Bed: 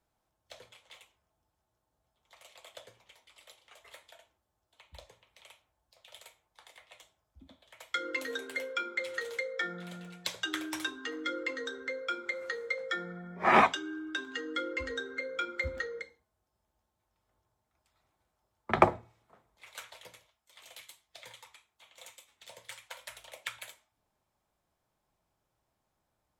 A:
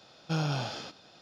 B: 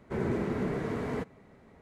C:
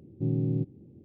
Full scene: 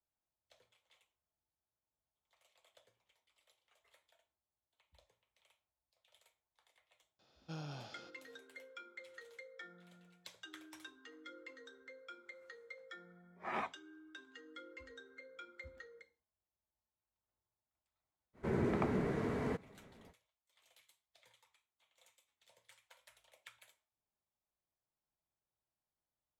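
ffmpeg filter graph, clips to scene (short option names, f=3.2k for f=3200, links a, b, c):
-filter_complex "[0:a]volume=-18dB[a];[1:a]equalizer=f=350:t=o:w=1.2:g=2.5,atrim=end=1.21,asetpts=PTS-STARTPTS,volume=-16.5dB,afade=t=in:d=0.004:c=hsin,afade=t=out:st=1.206:d=0.004:c=hsin,adelay=7190[b];[2:a]atrim=end=1.81,asetpts=PTS-STARTPTS,volume=-4dB,afade=t=in:d=0.05,afade=t=out:st=1.76:d=0.05,adelay=18330[c];[a][b][c]amix=inputs=3:normalize=0"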